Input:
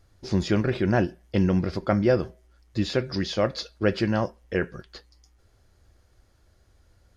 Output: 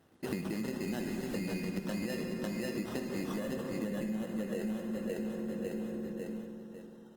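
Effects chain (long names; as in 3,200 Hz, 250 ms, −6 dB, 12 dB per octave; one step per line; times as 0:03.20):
high-pass filter sweep 220 Hz → 1,700 Hz, 0:04.36–0:05.95
sample-rate reduction 2,300 Hz, jitter 0%
high-pass filter 63 Hz 12 dB per octave
0:00.88–0:01.35: background noise pink −40 dBFS
0:03.34–0:04.62: thirty-one-band graphic EQ 200 Hz +11 dB, 500 Hz +6 dB, 5,000 Hz −11 dB
repeating echo 549 ms, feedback 33%, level −8 dB
brickwall limiter −13.5 dBFS, peak gain reduction 12 dB
convolution reverb RT60 2.3 s, pre-delay 3 ms, DRR 3 dB
downward compressor 12 to 1, threshold −34 dBFS, peak gain reduction 20.5 dB
level +1 dB
Opus 24 kbit/s 48,000 Hz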